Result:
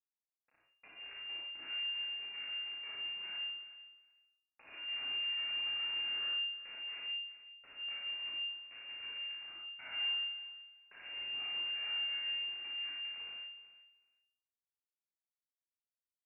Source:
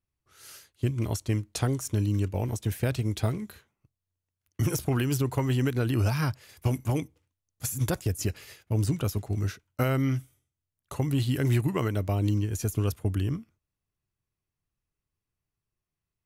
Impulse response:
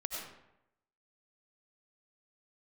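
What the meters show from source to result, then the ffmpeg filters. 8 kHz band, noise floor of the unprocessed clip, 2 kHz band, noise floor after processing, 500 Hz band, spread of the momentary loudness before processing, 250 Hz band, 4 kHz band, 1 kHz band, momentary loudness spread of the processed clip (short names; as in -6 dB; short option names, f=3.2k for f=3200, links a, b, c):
under -40 dB, under -85 dBFS, +3.0 dB, under -85 dBFS, -31.5 dB, 8 LU, under -35 dB, n/a, -18.5 dB, 14 LU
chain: -filter_complex "[0:a]aresample=16000,volume=19.5dB,asoftclip=hard,volume=-19.5dB,aresample=44100,acompressor=threshold=-26dB:ratio=6,highpass=500,asoftclip=type=tanh:threshold=-29.5dB,acrusher=bits=4:dc=4:mix=0:aa=0.000001,asplit=2[a][b];[b]adelay=35,volume=-2.5dB[c];[a][c]amix=inputs=2:normalize=0,aecho=1:1:375|750:0.168|0.0269[d];[1:a]atrim=start_sample=2205,asetrate=83790,aresample=44100[e];[d][e]afir=irnorm=-1:irlink=0,lowpass=f=2.4k:t=q:w=0.5098,lowpass=f=2.4k:t=q:w=0.6013,lowpass=f=2.4k:t=q:w=0.9,lowpass=f=2.4k:t=q:w=2.563,afreqshift=-2800,volume=-5dB"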